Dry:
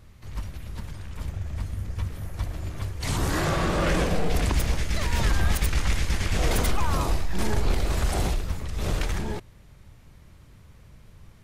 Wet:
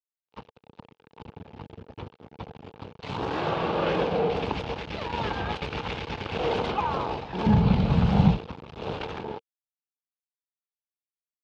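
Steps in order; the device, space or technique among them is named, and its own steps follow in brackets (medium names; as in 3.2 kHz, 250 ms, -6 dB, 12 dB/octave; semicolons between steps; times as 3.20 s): 7.46–8.37 s: resonant low shelf 260 Hz +11.5 dB, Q 3; blown loudspeaker (crossover distortion -30 dBFS; cabinet simulation 130–3900 Hz, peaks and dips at 460 Hz +9 dB, 860 Hz +9 dB, 1.9 kHz -7 dB, 2.8 kHz +3 dB)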